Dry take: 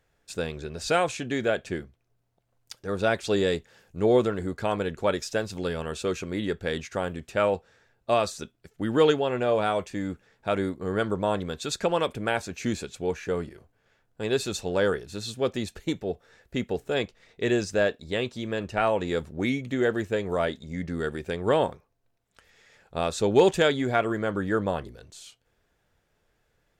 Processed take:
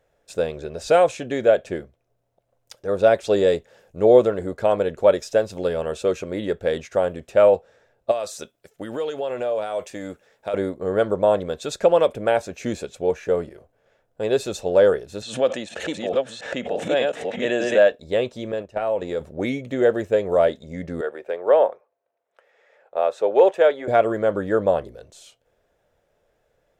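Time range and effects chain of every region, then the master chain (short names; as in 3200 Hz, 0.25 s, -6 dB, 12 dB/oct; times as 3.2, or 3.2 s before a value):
8.11–10.54 tilt +2 dB/oct + compressor 10:1, threshold -29 dBFS
15.22–17.92 reverse delay 0.595 s, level -2 dB + speaker cabinet 220–8700 Hz, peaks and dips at 400 Hz -10 dB, 1700 Hz +4 dB, 2900 Hz +6 dB, 5100 Hz -4 dB + backwards sustainer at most 66 dB/s
18.52–19.21 gate -32 dBFS, range -12 dB + compressor 4:1, threshold -28 dBFS
21.01–23.88 HPF 200 Hz 6 dB/oct + three-band isolator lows -19 dB, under 370 Hz, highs -14 dB, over 2600 Hz + notch 7100 Hz, Q 28
whole clip: bell 570 Hz +13 dB 0.91 oct; notch 4500 Hz, Q 18; gain -1 dB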